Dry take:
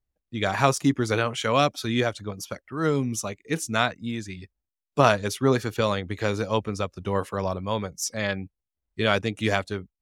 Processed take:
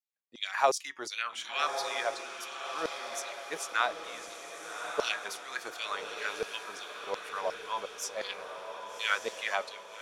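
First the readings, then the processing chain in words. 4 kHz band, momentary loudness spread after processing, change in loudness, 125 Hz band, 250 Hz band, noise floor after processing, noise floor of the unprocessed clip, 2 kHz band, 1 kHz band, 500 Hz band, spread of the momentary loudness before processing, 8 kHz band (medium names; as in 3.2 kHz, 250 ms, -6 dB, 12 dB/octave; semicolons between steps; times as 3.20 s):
-4.5 dB, 11 LU, -8.5 dB, -37.0 dB, -24.5 dB, -49 dBFS, under -85 dBFS, -4.5 dB, -6.0 dB, -11.0 dB, 13 LU, -6.0 dB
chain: flange 0.22 Hz, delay 3.9 ms, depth 3.5 ms, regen +87%; LFO high-pass saw down 2.8 Hz 480–5300 Hz; echo that smears into a reverb 1177 ms, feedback 54%, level -6.5 dB; trim -4 dB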